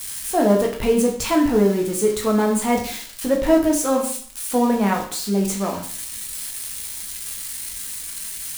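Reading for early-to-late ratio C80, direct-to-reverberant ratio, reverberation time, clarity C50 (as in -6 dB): 11.5 dB, -0.5 dB, 0.50 s, 7.5 dB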